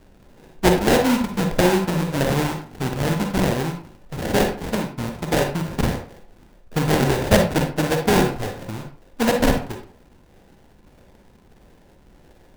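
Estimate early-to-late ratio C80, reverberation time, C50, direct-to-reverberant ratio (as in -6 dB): 12.0 dB, 0.40 s, 5.5 dB, 3.5 dB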